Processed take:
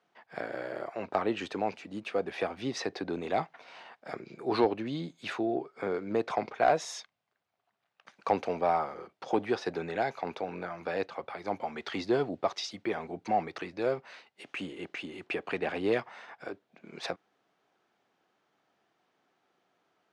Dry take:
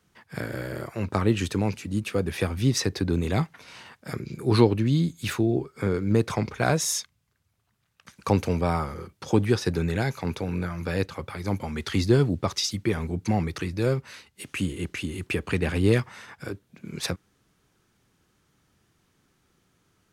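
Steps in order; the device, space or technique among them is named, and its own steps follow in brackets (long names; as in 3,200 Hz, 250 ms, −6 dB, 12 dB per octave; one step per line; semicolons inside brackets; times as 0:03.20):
intercom (band-pass filter 330–3,800 Hz; parametric band 710 Hz +10.5 dB 0.57 octaves; soft clipping −8 dBFS, distortion −23 dB)
level −4.5 dB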